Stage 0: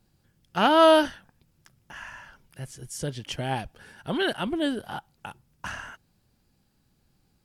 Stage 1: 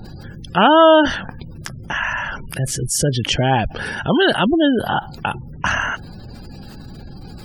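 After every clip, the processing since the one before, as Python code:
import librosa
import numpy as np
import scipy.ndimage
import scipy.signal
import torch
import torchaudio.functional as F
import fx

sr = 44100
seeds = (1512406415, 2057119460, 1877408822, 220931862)

y = fx.spec_gate(x, sr, threshold_db=-25, keep='strong')
y = fx.env_flatten(y, sr, amount_pct=50)
y = y * librosa.db_to_amplitude(6.0)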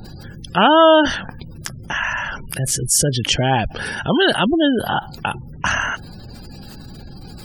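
y = fx.high_shelf(x, sr, hz=4400.0, db=7.5)
y = y * librosa.db_to_amplitude(-1.0)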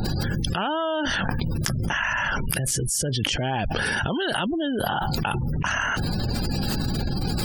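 y = fx.env_flatten(x, sr, amount_pct=100)
y = y * librosa.db_to_amplitude(-16.0)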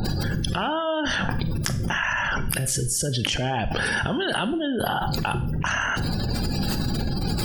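y = fx.rev_schroeder(x, sr, rt60_s=0.48, comb_ms=32, drr_db=11.5)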